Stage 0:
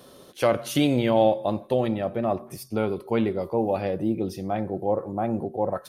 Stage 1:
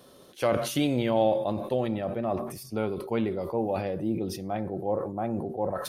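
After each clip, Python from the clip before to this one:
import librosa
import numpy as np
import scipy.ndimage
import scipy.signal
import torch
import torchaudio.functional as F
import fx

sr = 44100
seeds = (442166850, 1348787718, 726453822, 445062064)

y = fx.sustainer(x, sr, db_per_s=59.0)
y = y * 10.0 ** (-4.5 / 20.0)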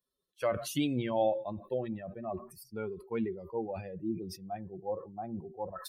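y = fx.bin_expand(x, sr, power=2.0)
y = y * 10.0 ** (-2.5 / 20.0)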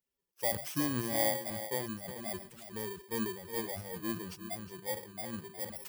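y = fx.bit_reversed(x, sr, seeds[0], block=32)
y = y + 10.0 ** (-11.5 / 20.0) * np.pad(y, (int(362 * sr / 1000.0), 0))[:len(y)]
y = y * 10.0 ** (-2.0 / 20.0)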